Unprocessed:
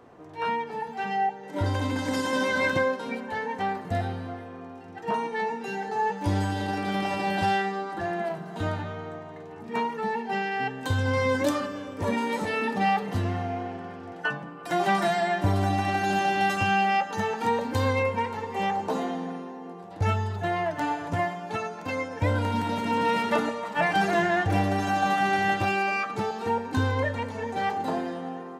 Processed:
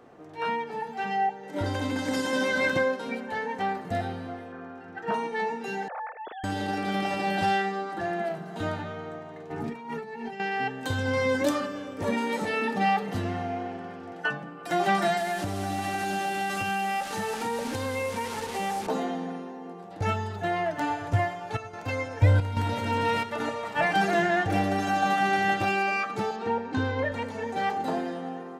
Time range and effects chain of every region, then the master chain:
0:04.52–0:05.12: low-pass filter 3,600 Hz 6 dB per octave + parametric band 1,500 Hz +10.5 dB 0.44 octaves
0:05.88–0:06.44: three sine waves on the formant tracks + high-pass filter 220 Hz 6 dB per octave + downward compressor, threshold −33 dBFS
0:09.50–0:10.40: low-shelf EQ 180 Hz +10 dB + compressor whose output falls as the input rises −36 dBFS + comb filter 7.3 ms, depth 51%
0:15.17–0:18.87: linear delta modulator 64 kbit/s, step −30 dBFS + downward compressor 3 to 1, threshold −26 dBFS
0:20.90–0:23.85: low shelf with overshoot 140 Hz +7.5 dB, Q 3 + single-tap delay 510 ms −17 dB + square-wave tremolo 1.2 Hz, depth 60%, duty 80%
0:26.36–0:27.12: high-pass filter 49 Hz + high-frequency loss of the air 110 metres
whole clip: parametric band 79 Hz −8 dB 0.83 octaves; notch filter 1,000 Hz, Q 9.5

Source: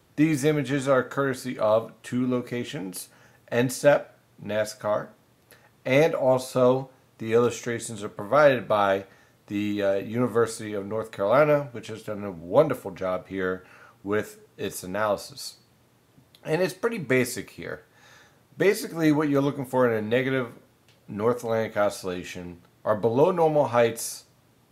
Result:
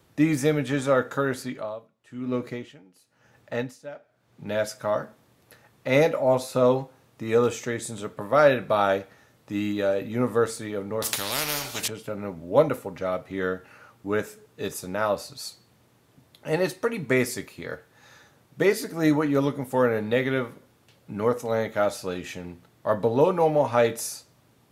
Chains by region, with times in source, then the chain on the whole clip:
0:01.42–0:04.47: parametric band 12,000 Hz −7 dB 0.99 octaves + tremolo with a sine in dB 1 Hz, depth 21 dB
0:11.02–0:11.88: high shelf with overshoot 2,600 Hz +13 dB, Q 1.5 + every bin compressed towards the loudest bin 4 to 1
whole clip: no processing

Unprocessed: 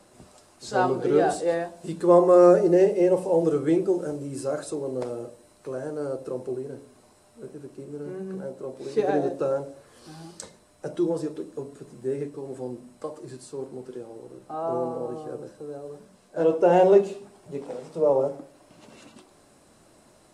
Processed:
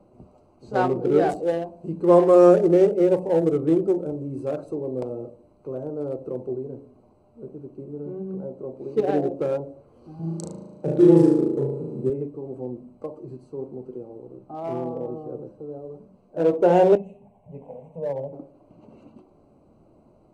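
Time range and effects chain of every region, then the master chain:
0:10.19–0:12.10: high-pass filter 110 Hz 24 dB per octave + low-shelf EQ 390 Hz +9 dB + flutter between parallel walls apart 6.3 metres, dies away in 1.1 s
0:14.44–0:14.86: parametric band 490 Hz −7 dB 0.36 octaves + highs frequency-modulated by the lows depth 0.12 ms
0:16.95–0:18.33: dynamic equaliser 880 Hz, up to −7 dB, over −34 dBFS, Q 0.76 + phaser with its sweep stopped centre 1,300 Hz, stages 6
whole clip: adaptive Wiener filter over 25 samples; low-shelf EQ 430 Hz +4 dB

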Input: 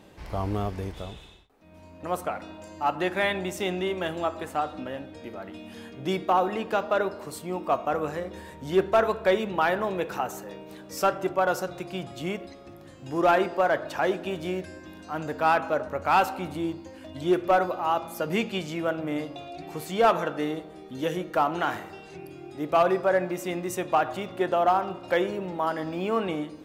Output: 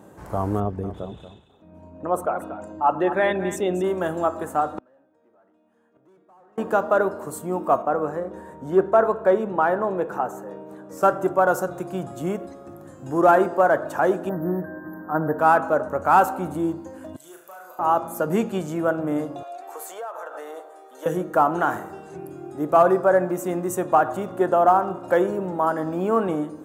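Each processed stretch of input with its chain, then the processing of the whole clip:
0:00.60–0:03.84: spectral envelope exaggerated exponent 1.5 + parametric band 3,200 Hz +8 dB 1.3 octaves + single-tap delay 232 ms −11.5 dB
0:04.78–0:06.58: mid-hump overdrive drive 28 dB, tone 1,500 Hz, clips at −12.5 dBFS + gate with flip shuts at −22 dBFS, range −40 dB
0:07.82–0:11.03: high-pass filter 670 Hz 6 dB per octave + spectral tilt −3.5 dB per octave
0:14.29–0:15.39: linear-phase brick-wall band-stop 2,000–12,000 Hz + high-shelf EQ 4,100 Hz +6 dB + comb filter 6.4 ms, depth 64%
0:17.16–0:17.79: first difference + downward compressor 4 to 1, threshold −45 dBFS + flutter between parallel walls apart 6.3 metres, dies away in 0.51 s
0:19.43–0:21.06: high-pass filter 530 Hz 24 dB per octave + downward compressor 12 to 1, threshold −35 dBFS
whole clip: high-pass filter 98 Hz; flat-topped bell 3,300 Hz −14 dB; level +5.5 dB

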